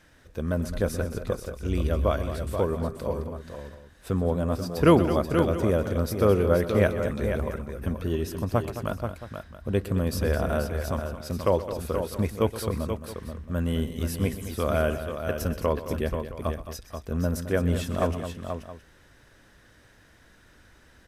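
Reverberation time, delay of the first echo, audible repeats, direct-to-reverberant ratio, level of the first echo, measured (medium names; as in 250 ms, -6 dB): no reverb, 125 ms, 4, no reverb, -15.0 dB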